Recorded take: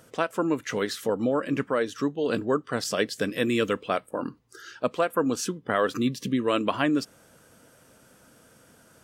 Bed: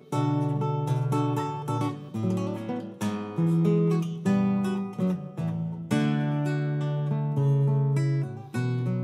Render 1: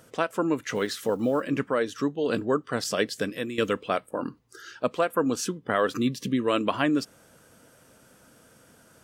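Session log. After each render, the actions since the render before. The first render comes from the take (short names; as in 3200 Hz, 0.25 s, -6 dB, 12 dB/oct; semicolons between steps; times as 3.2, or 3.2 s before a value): 0.75–1.47 block floating point 7-bit; 3.16–3.58 fade out, to -13.5 dB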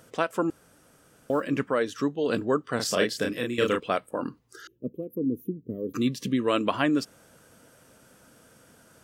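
0.5–1.3 room tone; 2.76–3.8 doubler 33 ms -3 dB; 4.67–5.94 inverse Chebyshev band-stop 760–8600 Hz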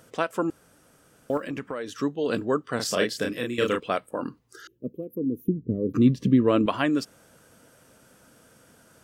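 1.37–1.98 compressor, threshold -28 dBFS; 5.48–6.66 tilt -3.5 dB/oct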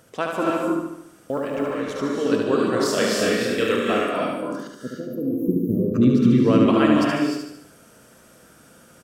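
feedback echo 73 ms, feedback 52%, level -4 dB; non-linear reverb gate 0.34 s rising, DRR -1 dB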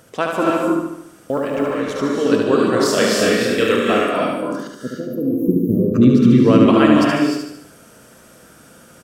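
gain +5 dB; limiter -1 dBFS, peak gain reduction 1.5 dB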